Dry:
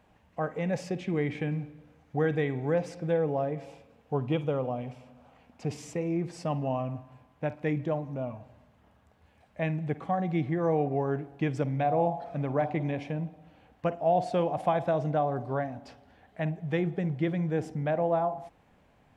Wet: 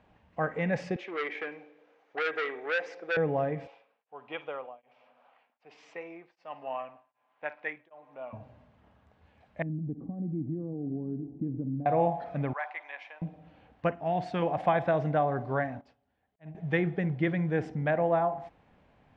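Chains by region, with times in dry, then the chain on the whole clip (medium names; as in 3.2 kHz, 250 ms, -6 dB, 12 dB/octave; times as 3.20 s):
0.96–3.17 s: Chebyshev band-pass 400–6900 Hz, order 3 + transformer saturation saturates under 1.9 kHz
3.67–8.33 s: band-pass 770–3700 Hz + tremolo of two beating tones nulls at 1.3 Hz
9.62–11.86 s: compression 2.5:1, threshold -37 dBFS + resonant low-pass 270 Hz, resonance Q 3 + delay 856 ms -21.5 dB
12.53–13.22 s: high-pass 930 Hz 24 dB/octave + tilt EQ -2 dB/octave
13.91–14.42 s: peaking EQ 550 Hz -10 dB 0.85 oct + tape noise reduction on one side only decoder only
15.81–16.55 s: slow attack 492 ms + upward expansion 2.5:1, over -53 dBFS
whole clip: low-pass 4.3 kHz 12 dB/octave; dynamic bell 1.8 kHz, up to +8 dB, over -51 dBFS, Q 1.6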